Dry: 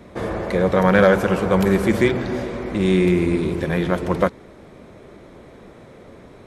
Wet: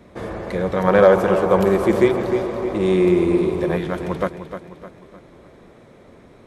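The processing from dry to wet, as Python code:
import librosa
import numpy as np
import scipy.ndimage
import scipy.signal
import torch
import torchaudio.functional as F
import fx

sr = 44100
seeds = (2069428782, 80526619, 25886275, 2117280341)

p1 = fx.spec_box(x, sr, start_s=0.88, length_s=2.89, low_hz=320.0, high_hz=1300.0, gain_db=7)
p2 = p1 + fx.echo_feedback(p1, sr, ms=305, feedback_pct=45, wet_db=-10, dry=0)
y = p2 * librosa.db_to_amplitude(-4.0)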